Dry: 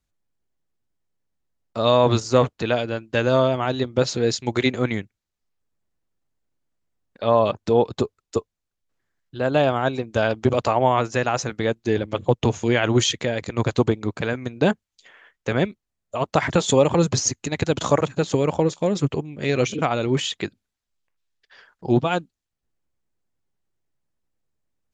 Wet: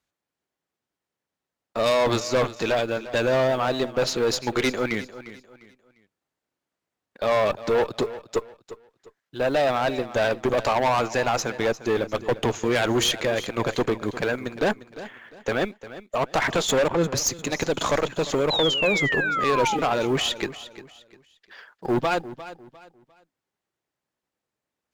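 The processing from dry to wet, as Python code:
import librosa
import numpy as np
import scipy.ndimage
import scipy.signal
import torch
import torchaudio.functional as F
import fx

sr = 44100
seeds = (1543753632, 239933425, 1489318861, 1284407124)

p1 = fx.highpass(x, sr, hz=470.0, slope=6)
p2 = fx.high_shelf(p1, sr, hz=4500.0, db=-7.5)
p3 = fx.quant_float(p2, sr, bits=2)
p4 = p2 + F.gain(torch.from_numpy(p3), -8.5).numpy()
p5 = fx.tube_stage(p4, sr, drive_db=21.0, bias=0.35)
p6 = fx.spec_paint(p5, sr, seeds[0], shape='fall', start_s=18.5, length_s=1.27, low_hz=790.0, high_hz=4100.0, level_db=-29.0)
p7 = p6 + fx.echo_feedback(p6, sr, ms=351, feedback_pct=31, wet_db=-15, dry=0)
p8 = fx.band_widen(p7, sr, depth_pct=70, at=(16.88, 17.39))
y = F.gain(torch.from_numpy(p8), 4.0).numpy()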